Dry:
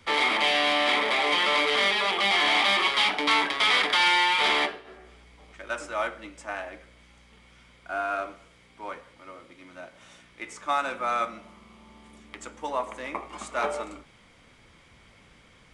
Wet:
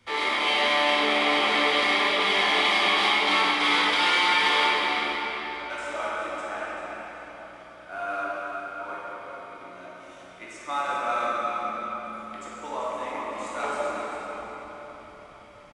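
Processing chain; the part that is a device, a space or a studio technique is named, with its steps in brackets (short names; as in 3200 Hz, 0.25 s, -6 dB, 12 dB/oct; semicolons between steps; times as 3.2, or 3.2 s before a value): cave (echo 0.391 s -10 dB; reverb RT60 4.8 s, pre-delay 14 ms, DRR -7.5 dB); gain -7 dB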